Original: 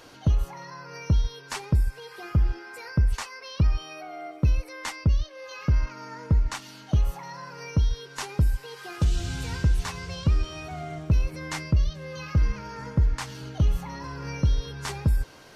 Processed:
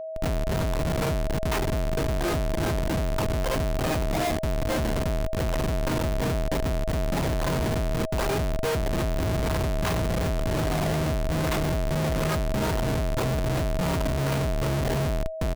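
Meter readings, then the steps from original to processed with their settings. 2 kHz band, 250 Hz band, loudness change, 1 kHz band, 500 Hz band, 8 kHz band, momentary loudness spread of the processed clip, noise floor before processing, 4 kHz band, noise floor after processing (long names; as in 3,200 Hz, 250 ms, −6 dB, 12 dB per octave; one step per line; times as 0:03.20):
+4.5 dB, +5.5 dB, +1.0 dB, +7.5 dB, +13.5 dB, +5.0 dB, 2 LU, −47 dBFS, +4.0 dB, −27 dBFS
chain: single-tap delay 356 ms −17.5 dB
sample-and-hold swept by an LFO 20×, swing 160% 2.5 Hz
high-frequency loss of the air 170 metres
comparator with hysteresis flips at −40.5 dBFS
steady tone 640 Hz −32 dBFS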